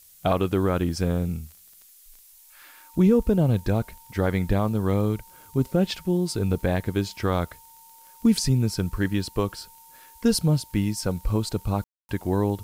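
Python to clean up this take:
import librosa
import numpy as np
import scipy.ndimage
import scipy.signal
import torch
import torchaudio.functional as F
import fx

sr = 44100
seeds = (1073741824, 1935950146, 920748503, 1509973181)

y = fx.fix_declick_ar(x, sr, threshold=6.5)
y = fx.notch(y, sr, hz=910.0, q=30.0)
y = fx.fix_ambience(y, sr, seeds[0], print_start_s=1.56, print_end_s=2.06, start_s=11.84, end_s=12.09)
y = fx.noise_reduce(y, sr, print_start_s=1.56, print_end_s=2.06, reduce_db=17.0)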